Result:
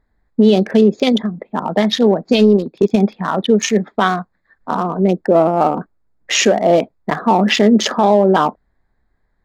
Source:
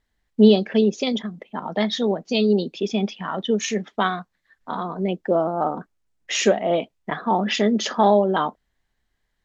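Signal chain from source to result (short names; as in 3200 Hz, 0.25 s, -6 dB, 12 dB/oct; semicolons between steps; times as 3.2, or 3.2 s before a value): Wiener smoothing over 15 samples; 2.23–2.96 transient shaper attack +6 dB, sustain -7 dB; maximiser +12 dB; gain -2 dB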